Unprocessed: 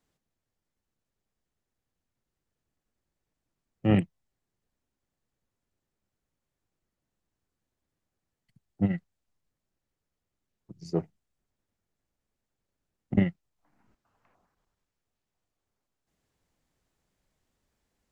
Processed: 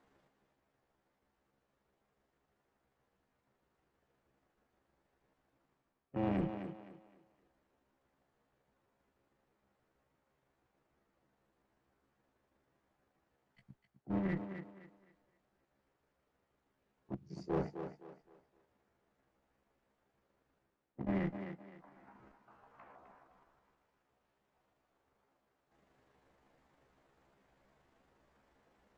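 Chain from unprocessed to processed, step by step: treble shelf 2.4 kHz -10 dB; reverse; compression 8:1, threshold -36 dBFS, peak gain reduction 18.5 dB; reverse; granular stretch 1.6×, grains 79 ms; one-sided clip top -46.5 dBFS; overdrive pedal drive 14 dB, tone 1.5 kHz, clips at -30 dBFS; on a send: thinning echo 258 ms, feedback 33%, high-pass 190 Hz, level -7.5 dB; on the sum: trim +8 dB

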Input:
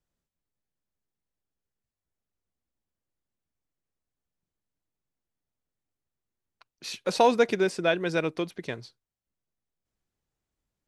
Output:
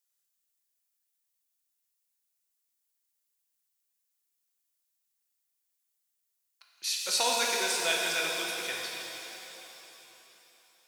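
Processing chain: differentiator; pitch-shifted reverb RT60 3.6 s, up +7 st, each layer -8 dB, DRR -2 dB; trim +8.5 dB

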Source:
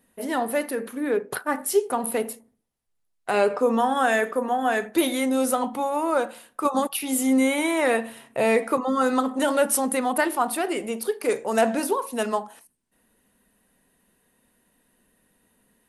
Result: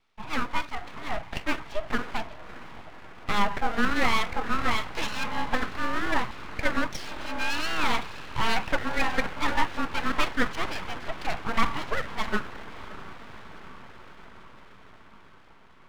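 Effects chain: mistuned SSB -100 Hz 490–3500 Hz; echo that smears into a reverb 590 ms, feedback 70%, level -15 dB; full-wave rectifier; trim +1.5 dB

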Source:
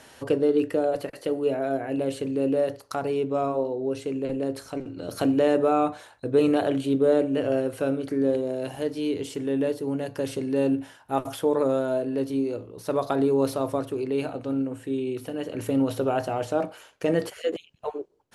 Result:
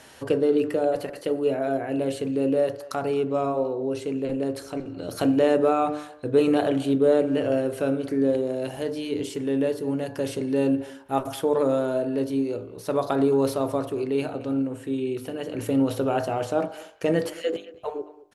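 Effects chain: de-hum 49.95 Hz, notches 34; speakerphone echo 220 ms, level -18 dB; trim +1.5 dB

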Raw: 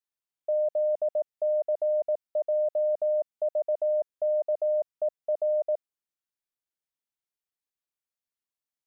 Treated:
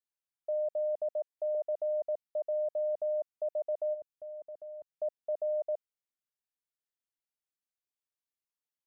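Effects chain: 1.13–1.55 s: high-pass 310 Hz 12 dB/octave; 3.93–4.89 s: peaking EQ 830 Hz -> 630 Hz -13 dB 1.8 oct; trim -6 dB

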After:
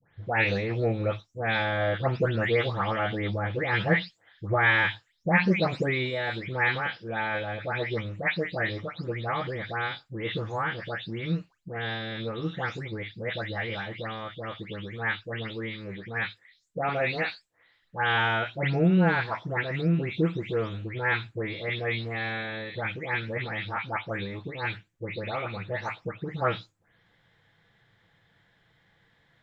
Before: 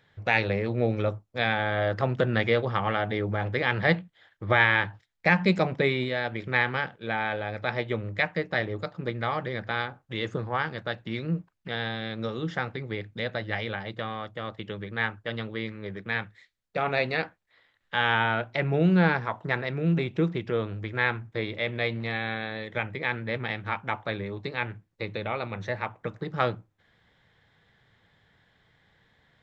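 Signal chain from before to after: delay that grows with frequency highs late, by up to 280 ms

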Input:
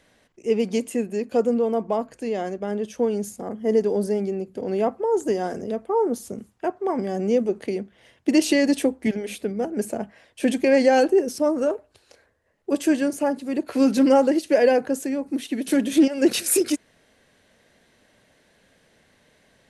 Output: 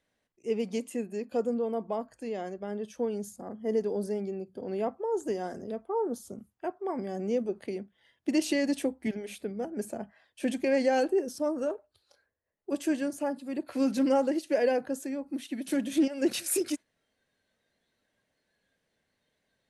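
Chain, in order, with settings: spectral noise reduction 10 dB; trim -8.5 dB

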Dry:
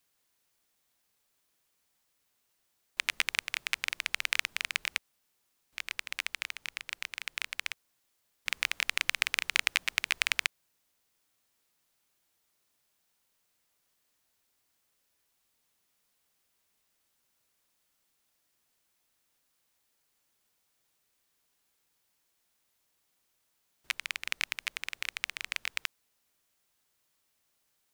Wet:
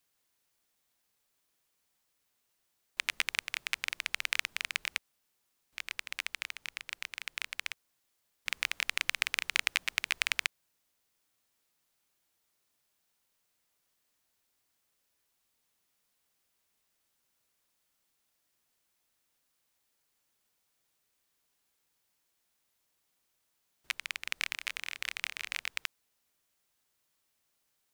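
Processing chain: 24.33–25.63 s: doubling 27 ms -5 dB; trim -2 dB

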